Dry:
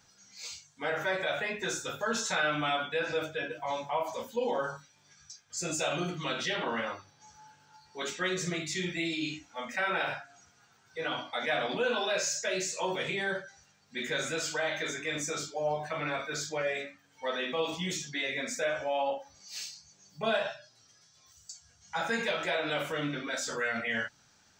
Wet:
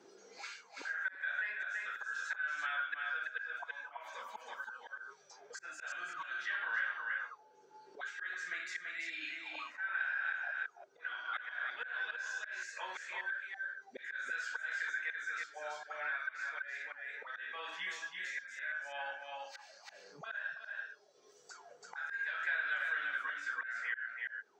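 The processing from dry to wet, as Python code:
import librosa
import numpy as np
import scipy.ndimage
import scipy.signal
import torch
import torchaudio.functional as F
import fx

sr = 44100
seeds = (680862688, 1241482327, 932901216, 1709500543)

y = fx.reverse_delay(x, sr, ms=179, wet_db=-6, at=(9.97, 12.32))
y = fx.riaa(y, sr, side='recording')
y = fx.auto_wah(y, sr, base_hz=330.0, top_hz=1600.0, q=12.0, full_db=-32.0, direction='up')
y = fx.high_shelf(y, sr, hz=7400.0, db=-6.0)
y = fx.auto_swell(y, sr, attack_ms=469.0)
y = y + 10.0 ** (-5.0 / 20.0) * np.pad(y, (int(333 * sr / 1000.0), 0))[:len(y)]
y = fx.band_squash(y, sr, depth_pct=70)
y = F.gain(torch.from_numpy(y), 11.0).numpy()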